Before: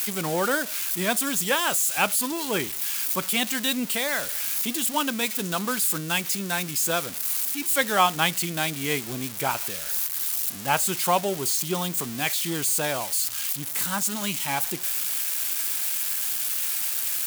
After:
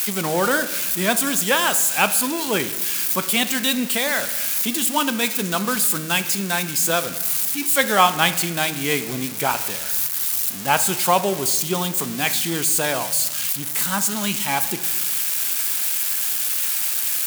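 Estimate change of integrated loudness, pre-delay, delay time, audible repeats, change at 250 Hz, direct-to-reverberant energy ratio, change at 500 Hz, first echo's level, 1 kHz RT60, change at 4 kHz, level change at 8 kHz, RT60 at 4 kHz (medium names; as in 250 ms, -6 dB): +5.0 dB, 4 ms, no echo, no echo, +5.0 dB, 10.5 dB, +5.0 dB, no echo, 1.2 s, +4.5 dB, +4.5 dB, 1.0 s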